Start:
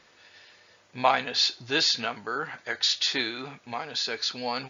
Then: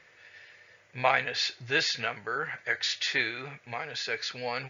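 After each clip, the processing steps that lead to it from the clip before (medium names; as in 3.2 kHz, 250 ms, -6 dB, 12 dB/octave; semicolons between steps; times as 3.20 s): graphic EQ 125/250/500/1000/2000/4000 Hz +8/-7/+5/-4/+11/-5 dB; trim -4 dB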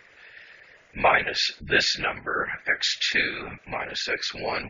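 spectral gate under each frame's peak -25 dB strong; whisper effect; trim +5 dB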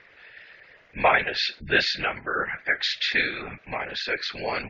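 low-pass 4.7 kHz 24 dB/octave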